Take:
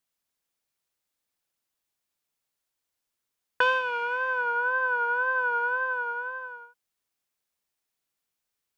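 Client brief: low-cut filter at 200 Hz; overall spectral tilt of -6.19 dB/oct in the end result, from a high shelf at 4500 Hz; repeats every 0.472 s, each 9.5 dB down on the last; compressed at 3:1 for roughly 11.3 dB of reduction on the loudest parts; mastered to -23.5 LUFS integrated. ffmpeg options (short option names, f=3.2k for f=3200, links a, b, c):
-af "highpass=200,highshelf=f=4.5k:g=6.5,acompressor=threshold=-34dB:ratio=3,aecho=1:1:472|944|1416|1888:0.335|0.111|0.0365|0.012,volume=10.5dB"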